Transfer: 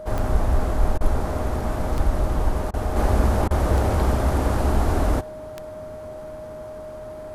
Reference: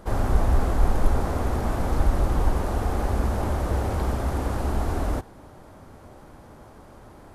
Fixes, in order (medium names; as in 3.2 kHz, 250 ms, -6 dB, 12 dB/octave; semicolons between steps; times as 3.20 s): de-click; band-stop 620 Hz, Q 30; interpolate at 0.98/2.71/3.48 s, 26 ms; trim 0 dB, from 2.96 s -5 dB